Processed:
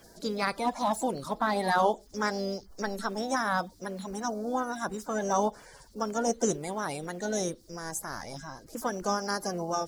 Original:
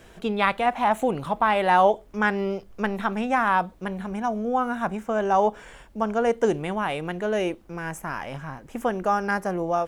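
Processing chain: bin magnitudes rounded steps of 30 dB; resonant high shelf 3600 Hz +10.5 dB, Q 3; harmoniser +4 st -17 dB; gain -5.5 dB

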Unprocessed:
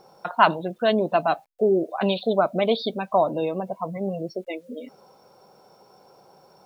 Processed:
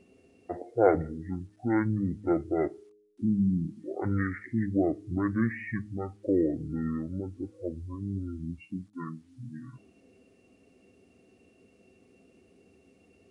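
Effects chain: de-hum 208.5 Hz, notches 4; speed mistake 15 ips tape played at 7.5 ips; gain -6.5 dB

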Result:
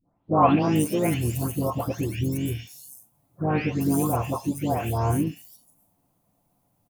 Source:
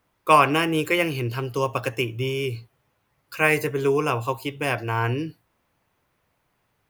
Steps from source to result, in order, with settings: spectral delay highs late, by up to 0.487 s; EQ curve 110 Hz 0 dB, 270 Hz +8 dB, 420 Hz -10 dB, 710 Hz +4 dB, 1700 Hz -17 dB, 11000 Hz +4 dB; harmoniser -7 st -11 dB, -4 st -15 dB, +3 st -15 dB; gain +1.5 dB

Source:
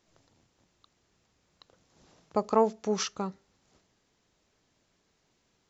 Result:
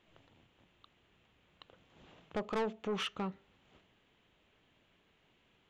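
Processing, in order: in parallel at -0.5 dB: compressor, threshold -38 dBFS, peak gain reduction 19.5 dB; on the sum: resonant high shelf 4000 Hz -9.5 dB, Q 3; soft clip -25 dBFS, distortion -6 dB; gain -4.5 dB

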